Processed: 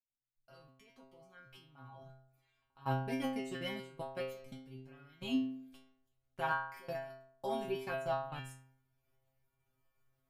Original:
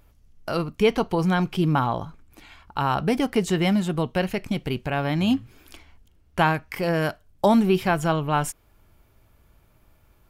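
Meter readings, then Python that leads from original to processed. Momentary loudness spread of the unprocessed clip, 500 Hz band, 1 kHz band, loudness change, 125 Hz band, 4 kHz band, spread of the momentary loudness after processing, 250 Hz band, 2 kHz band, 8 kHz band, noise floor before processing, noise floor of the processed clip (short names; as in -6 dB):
8 LU, -16.5 dB, -16.0 dB, -16.0 dB, -20.0 dB, -16.0 dB, 21 LU, -18.5 dB, -15.0 dB, -21.0 dB, -60 dBFS, -83 dBFS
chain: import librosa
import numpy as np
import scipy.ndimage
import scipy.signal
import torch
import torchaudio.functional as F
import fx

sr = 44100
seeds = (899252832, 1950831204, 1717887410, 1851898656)

y = fx.fade_in_head(x, sr, length_s=2.56)
y = fx.level_steps(y, sr, step_db=22)
y = fx.stiff_resonator(y, sr, f0_hz=130.0, decay_s=0.74, stiffness=0.002)
y = y * 10.0 ** (3.5 / 20.0)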